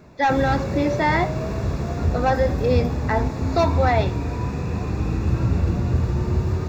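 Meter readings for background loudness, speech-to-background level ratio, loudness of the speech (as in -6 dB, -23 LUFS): -24.5 LUFS, 1.5 dB, -23.0 LUFS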